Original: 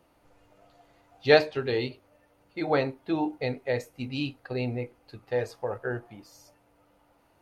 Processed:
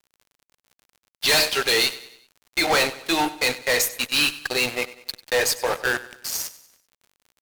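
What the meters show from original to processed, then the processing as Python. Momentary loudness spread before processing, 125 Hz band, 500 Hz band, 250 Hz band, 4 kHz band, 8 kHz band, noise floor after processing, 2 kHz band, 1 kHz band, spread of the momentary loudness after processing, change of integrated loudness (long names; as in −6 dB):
15 LU, −6.5 dB, +0.5 dB, 0.0 dB, +16.0 dB, can't be measured, below −85 dBFS, +11.0 dB, +7.0 dB, 10 LU, +7.0 dB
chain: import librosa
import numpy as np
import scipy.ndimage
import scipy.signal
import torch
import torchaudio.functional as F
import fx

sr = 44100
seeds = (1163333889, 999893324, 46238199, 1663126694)

p1 = np.diff(x, prepend=0.0)
p2 = fx.fuzz(p1, sr, gain_db=51.0, gate_db=-58.0)
p3 = p2 + fx.echo_feedback(p2, sr, ms=96, feedback_pct=48, wet_db=-17.0, dry=0)
p4 = fx.dmg_crackle(p3, sr, seeds[0], per_s=54.0, level_db=-39.0)
y = p4 * 10.0 ** (-3.0 / 20.0)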